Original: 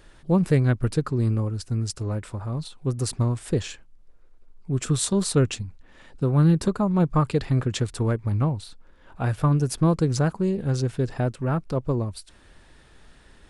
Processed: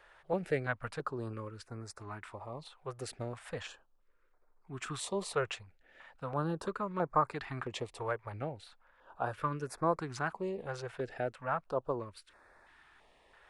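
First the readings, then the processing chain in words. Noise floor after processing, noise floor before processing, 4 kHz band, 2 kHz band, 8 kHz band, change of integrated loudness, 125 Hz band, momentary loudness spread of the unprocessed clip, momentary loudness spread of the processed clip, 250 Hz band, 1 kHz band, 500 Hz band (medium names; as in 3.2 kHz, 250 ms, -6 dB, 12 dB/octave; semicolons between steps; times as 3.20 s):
-68 dBFS, -53 dBFS, -11.0 dB, -3.0 dB, -15.5 dB, -13.0 dB, -20.5 dB, 9 LU, 13 LU, -17.5 dB, -3.0 dB, -8.5 dB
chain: three-band isolator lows -21 dB, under 490 Hz, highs -16 dB, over 2.6 kHz; step-sequenced notch 3 Hz 260–3000 Hz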